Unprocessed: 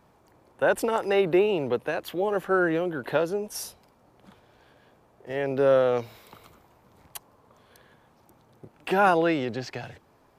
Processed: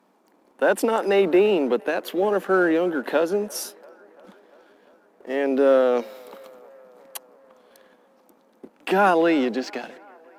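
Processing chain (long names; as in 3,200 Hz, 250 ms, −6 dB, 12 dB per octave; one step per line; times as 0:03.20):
elliptic high-pass filter 190 Hz, stop band 40 dB
parametric band 270 Hz +6 dB 0.35 octaves
in parallel at −1 dB: brickwall limiter −21 dBFS, peak gain reduction 10.5 dB
on the sum: leveller curve on the samples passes 1
on a send: delay with a band-pass on its return 343 ms, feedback 68%, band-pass 950 Hz, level −20.5 dB
on the sum: harmonic generator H 3 −17 dB, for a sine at −8 dBFS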